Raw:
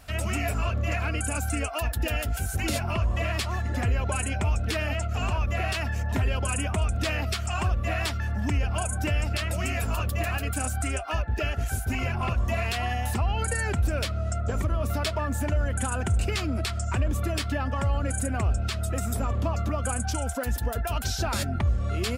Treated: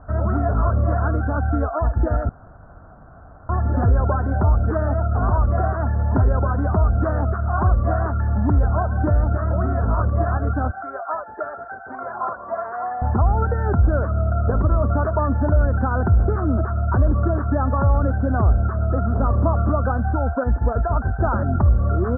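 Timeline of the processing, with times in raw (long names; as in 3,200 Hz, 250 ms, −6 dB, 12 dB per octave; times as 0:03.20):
0:02.29–0:03.49: fill with room tone
0:10.71–0:13.02: band-pass filter 650–7,800 Hz
whole clip: Butterworth low-pass 1,500 Hz 72 dB per octave; level +8.5 dB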